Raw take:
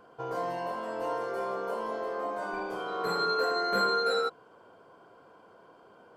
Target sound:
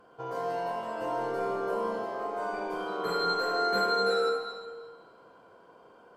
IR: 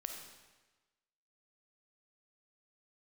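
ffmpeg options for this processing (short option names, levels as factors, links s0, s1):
-filter_complex "[0:a]asettb=1/sr,asplit=3[s0][s1][s2];[s0]atrim=end=1.014[s3];[s1]atrim=start=1.01:end=2.02,asetpts=PTS-STARTPTS,afade=t=in:d=0.004:c=qsin,afade=t=out:st=1.006:d=0.004:c=qsin,lowshelf=f=260:g=9[s4];[s2]atrim=start=2.016[s5];[s3][s4]acrossfade=d=0.004:c1=hsin:c2=qsin[s6];[s6][s5]acrossfade=d=0.004:c1=qsin:c2=hsin[s7];[1:a]atrim=start_sample=2205,asetrate=33075,aresample=44100[s8];[s7][s8]afir=irnorm=-1:irlink=0"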